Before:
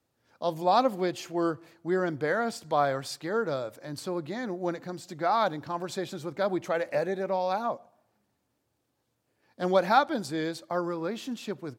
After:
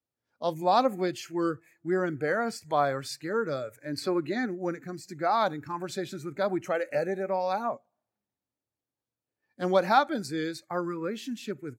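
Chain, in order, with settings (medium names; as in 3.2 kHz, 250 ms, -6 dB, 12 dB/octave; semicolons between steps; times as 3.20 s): spectral noise reduction 16 dB; 3.86–4.46 s: time-frequency box 220–5200 Hz +6 dB; 6.93–7.65 s: crackle 63 per s -56 dBFS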